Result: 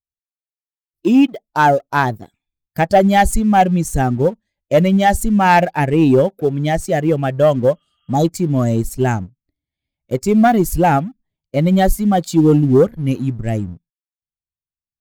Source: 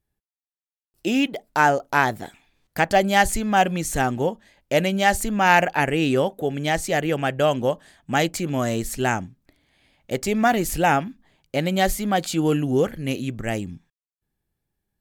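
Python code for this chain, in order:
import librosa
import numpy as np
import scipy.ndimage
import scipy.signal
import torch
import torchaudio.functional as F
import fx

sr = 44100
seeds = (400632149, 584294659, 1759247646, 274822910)

y = fx.bin_expand(x, sr, power=1.5)
y = fx.tilt_shelf(y, sr, db=7.5, hz=1200.0)
y = fx.spec_repair(y, sr, seeds[0], start_s=7.78, length_s=0.45, low_hz=1200.0, high_hz=3300.0, source='before')
y = fx.leveller(y, sr, passes=1)
y = fx.high_shelf(y, sr, hz=5000.0, db=8.0)
y = y * 10.0 ** (2.0 / 20.0)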